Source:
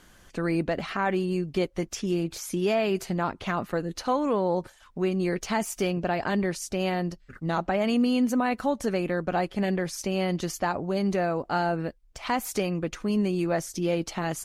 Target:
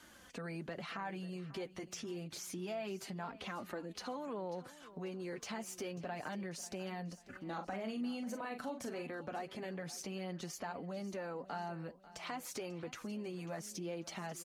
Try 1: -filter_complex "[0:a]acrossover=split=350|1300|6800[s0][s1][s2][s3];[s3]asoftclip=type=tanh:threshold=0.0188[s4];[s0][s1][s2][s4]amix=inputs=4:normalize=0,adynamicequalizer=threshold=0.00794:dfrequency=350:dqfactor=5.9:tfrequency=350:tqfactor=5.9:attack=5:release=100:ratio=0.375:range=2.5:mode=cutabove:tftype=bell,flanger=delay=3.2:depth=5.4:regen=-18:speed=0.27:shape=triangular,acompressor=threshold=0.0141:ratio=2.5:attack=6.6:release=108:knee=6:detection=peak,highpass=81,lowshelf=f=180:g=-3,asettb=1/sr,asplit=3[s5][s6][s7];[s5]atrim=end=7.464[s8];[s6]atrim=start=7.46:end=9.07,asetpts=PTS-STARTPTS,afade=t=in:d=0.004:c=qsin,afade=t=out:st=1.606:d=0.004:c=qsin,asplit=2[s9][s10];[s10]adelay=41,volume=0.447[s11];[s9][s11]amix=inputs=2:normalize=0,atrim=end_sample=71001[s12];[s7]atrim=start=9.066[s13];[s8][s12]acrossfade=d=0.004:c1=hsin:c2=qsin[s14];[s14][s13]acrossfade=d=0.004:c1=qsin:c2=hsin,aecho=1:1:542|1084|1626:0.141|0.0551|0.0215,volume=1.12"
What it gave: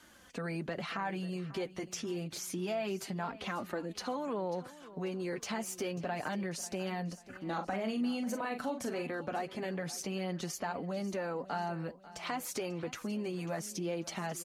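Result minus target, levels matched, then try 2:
compression: peak gain reduction -6 dB; saturation: distortion -7 dB
-filter_complex "[0:a]acrossover=split=350|1300|6800[s0][s1][s2][s3];[s3]asoftclip=type=tanh:threshold=0.00794[s4];[s0][s1][s2][s4]amix=inputs=4:normalize=0,adynamicequalizer=threshold=0.00794:dfrequency=350:dqfactor=5.9:tfrequency=350:tqfactor=5.9:attack=5:release=100:ratio=0.375:range=2.5:mode=cutabove:tftype=bell,flanger=delay=3.2:depth=5.4:regen=-18:speed=0.27:shape=triangular,acompressor=threshold=0.00447:ratio=2.5:attack=6.6:release=108:knee=6:detection=peak,highpass=81,lowshelf=f=180:g=-3,asettb=1/sr,asplit=3[s5][s6][s7];[s5]atrim=end=7.464[s8];[s6]atrim=start=7.46:end=9.07,asetpts=PTS-STARTPTS,afade=t=in:d=0.004:c=qsin,afade=t=out:st=1.606:d=0.004:c=qsin,asplit=2[s9][s10];[s10]adelay=41,volume=0.447[s11];[s9][s11]amix=inputs=2:normalize=0,atrim=end_sample=71001[s12];[s7]atrim=start=9.066[s13];[s8][s12]acrossfade=d=0.004:c1=hsin:c2=qsin[s14];[s14][s13]acrossfade=d=0.004:c1=qsin:c2=hsin,aecho=1:1:542|1084|1626:0.141|0.0551|0.0215,volume=1.12"

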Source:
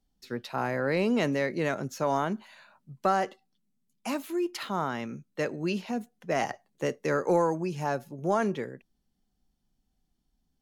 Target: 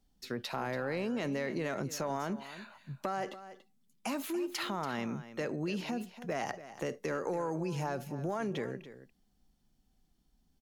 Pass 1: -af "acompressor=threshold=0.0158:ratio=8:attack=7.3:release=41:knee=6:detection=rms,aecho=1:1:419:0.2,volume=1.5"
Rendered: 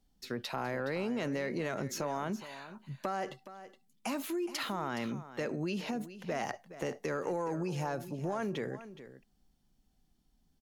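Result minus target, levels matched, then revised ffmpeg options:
echo 134 ms late
-af "acompressor=threshold=0.0158:ratio=8:attack=7.3:release=41:knee=6:detection=rms,aecho=1:1:285:0.2,volume=1.5"

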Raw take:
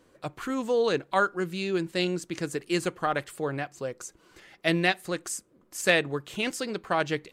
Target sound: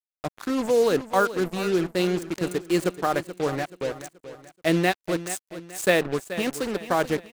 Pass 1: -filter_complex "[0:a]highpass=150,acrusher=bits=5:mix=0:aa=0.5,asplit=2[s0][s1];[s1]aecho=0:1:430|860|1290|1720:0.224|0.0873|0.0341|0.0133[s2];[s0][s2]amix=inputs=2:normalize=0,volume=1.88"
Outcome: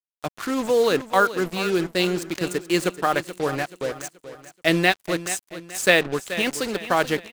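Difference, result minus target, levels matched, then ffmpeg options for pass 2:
4 kHz band +4.0 dB
-filter_complex "[0:a]highpass=150,equalizer=f=3200:t=o:w=2.8:g=-8,acrusher=bits=5:mix=0:aa=0.5,asplit=2[s0][s1];[s1]aecho=0:1:430|860|1290|1720:0.224|0.0873|0.0341|0.0133[s2];[s0][s2]amix=inputs=2:normalize=0,volume=1.88"

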